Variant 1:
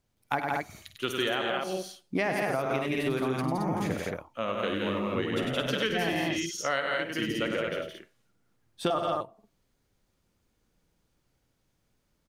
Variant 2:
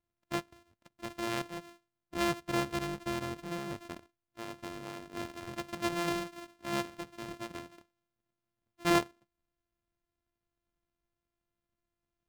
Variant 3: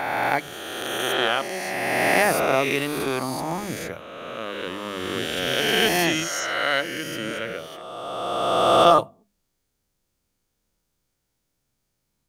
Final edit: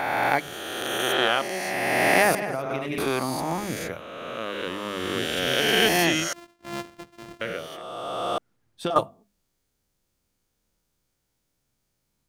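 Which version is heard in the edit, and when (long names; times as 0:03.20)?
3
0:02.35–0:02.98: punch in from 1
0:06.33–0:07.41: punch in from 2
0:08.38–0:08.96: punch in from 1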